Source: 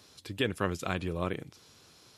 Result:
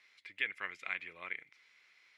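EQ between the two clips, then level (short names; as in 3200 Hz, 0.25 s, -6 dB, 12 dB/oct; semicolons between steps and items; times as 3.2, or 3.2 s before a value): band-pass 2100 Hz, Q 11; +11.5 dB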